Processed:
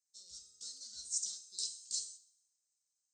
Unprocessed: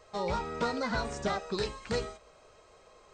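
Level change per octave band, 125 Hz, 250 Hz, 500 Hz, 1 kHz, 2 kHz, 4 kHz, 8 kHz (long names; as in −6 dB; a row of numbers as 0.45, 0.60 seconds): below −35 dB, below −40 dB, below −40 dB, below −40 dB, below −35 dB, −2.5 dB, +10.5 dB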